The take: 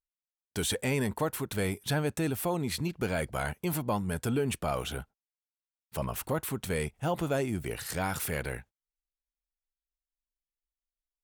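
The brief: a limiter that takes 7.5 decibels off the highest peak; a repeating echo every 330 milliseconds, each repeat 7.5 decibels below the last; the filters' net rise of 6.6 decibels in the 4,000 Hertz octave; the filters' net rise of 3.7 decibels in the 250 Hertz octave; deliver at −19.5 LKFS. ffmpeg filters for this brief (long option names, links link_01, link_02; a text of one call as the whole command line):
ffmpeg -i in.wav -af "equalizer=frequency=250:width_type=o:gain=5,equalizer=frequency=4000:width_type=o:gain=8,alimiter=limit=-22dB:level=0:latency=1,aecho=1:1:330|660|990|1320|1650:0.422|0.177|0.0744|0.0312|0.0131,volume=12.5dB" out.wav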